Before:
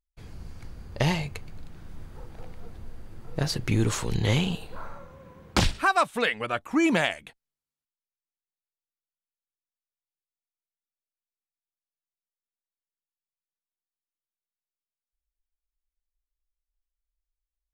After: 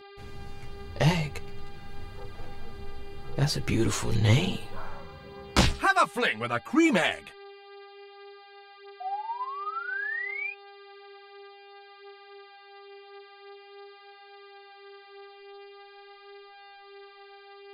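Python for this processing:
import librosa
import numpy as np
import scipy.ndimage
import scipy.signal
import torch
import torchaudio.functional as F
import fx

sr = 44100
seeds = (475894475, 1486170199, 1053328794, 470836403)

y = fx.dmg_buzz(x, sr, base_hz=400.0, harmonics=12, level_db=-49.0, tilt_db=-5, odd_only=False)
y = fx.spec_paint(y, sr, seeds[0], shape='rise', start_s=9.0, length_s=1.53, low_hz=720.0, high_hz=2500.0, level_db=-34.0)
y = fx.chorus_voices(y, sr, voices=2, hz=0.45, base_ms=12, depth_ms=3.4, mix_pct=45)
y = F.gain(torch.from_numpy(y), 3.0).numpy()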